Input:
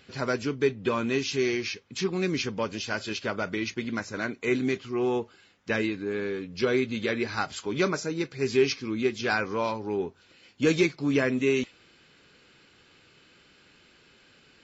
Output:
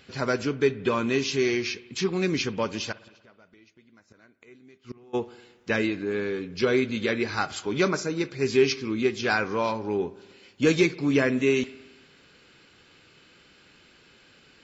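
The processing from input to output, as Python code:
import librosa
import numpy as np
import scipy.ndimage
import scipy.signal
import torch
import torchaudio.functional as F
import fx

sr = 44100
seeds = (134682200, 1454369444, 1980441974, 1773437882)

y = fx.gate_flip(x, sr, shuts_db=-27.0, range_db=-28, at=(2.91, 5.13), fade=0.02)
y = fx.rev_spring(y, sr, rt60_s=1.2, pass_ms=(58,), chirp_ms=45, drr_db=18.0)
y = y * librosa.db_to_amplitude(2.0)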